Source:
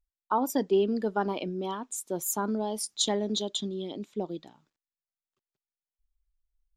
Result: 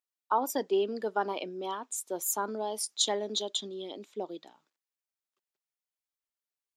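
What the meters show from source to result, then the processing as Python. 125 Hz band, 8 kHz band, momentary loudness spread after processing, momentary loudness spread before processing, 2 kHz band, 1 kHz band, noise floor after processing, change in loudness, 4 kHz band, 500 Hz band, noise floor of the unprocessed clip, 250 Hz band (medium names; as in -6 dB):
under -10 dB, 0.0 dB, 11 LU, 10 LU, 0.0 dB, 0.0 dB, under -85 dBFS, -2.0 dB, 0.0 dB, -2.5 dB, under -85 dBFS, -8.5 dB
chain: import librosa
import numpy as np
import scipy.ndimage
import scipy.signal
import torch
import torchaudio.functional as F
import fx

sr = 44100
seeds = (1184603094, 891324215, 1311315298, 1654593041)

y = scipy.signal.sosfilt(scipy.signal.butter(2, 400.0, 'highpass', fs=sr, output='sos'), x)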